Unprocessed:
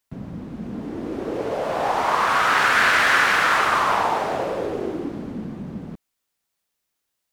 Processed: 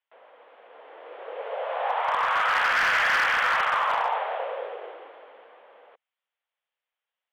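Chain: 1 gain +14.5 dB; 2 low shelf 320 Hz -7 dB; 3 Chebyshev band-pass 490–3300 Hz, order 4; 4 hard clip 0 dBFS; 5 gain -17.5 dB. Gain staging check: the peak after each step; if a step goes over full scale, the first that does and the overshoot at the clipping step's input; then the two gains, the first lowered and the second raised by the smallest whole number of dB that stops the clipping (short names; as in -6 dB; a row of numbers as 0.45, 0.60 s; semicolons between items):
+9.5, +9.0, +8.5, 0.0, -17.5 dBFS; step 1, 8.5 dB; step 1 +5.5 dB, step 5 -8.5 dB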